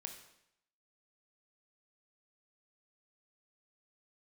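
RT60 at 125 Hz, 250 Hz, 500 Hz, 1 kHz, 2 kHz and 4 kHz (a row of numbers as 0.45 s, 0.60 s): 0.75 s, 0.75 s, 0.75 s, 0.75 s, 0.75 s, 0.75 s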